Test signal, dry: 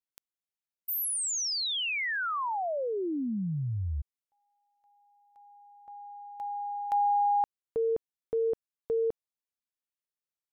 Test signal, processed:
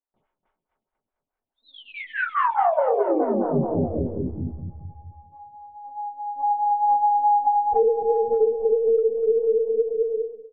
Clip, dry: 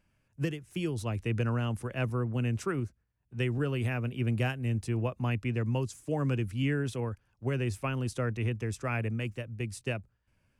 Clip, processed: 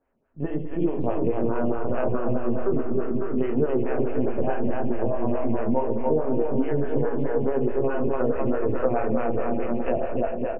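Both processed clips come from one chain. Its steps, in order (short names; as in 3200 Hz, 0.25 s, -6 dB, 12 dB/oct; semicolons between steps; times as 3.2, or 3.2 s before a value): stepped spectrum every 50 ms; doubler 13 ms -9 dB; AGC gain up to 7 dB; dynamic EQ 660 Hz, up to +5 dB, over -35 dBFS, Q 1.2; HPF 210 Hz 6 dB/oct; LPC vocoder at 8 kHz pitch kept; LPF 1000 Hz 12 dB/oct; on a send: bouncing-ball echo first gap 0.29 s, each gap 0.9×, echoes 5; on the sum: two-slope reverb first 0.76 s, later 2 s, from -18 dB, DRR 1 dB; compressor 6:1, threshold -25 dBFS; photocell phaser 4.7 Hz; gain +8.5 dB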